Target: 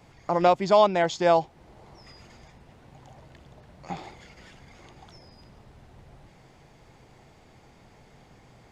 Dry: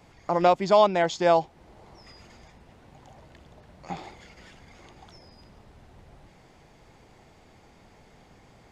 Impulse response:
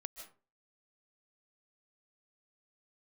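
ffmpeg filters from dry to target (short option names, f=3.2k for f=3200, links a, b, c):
-af "equalizer=f=130:t=o:w=0.29:g=5.5"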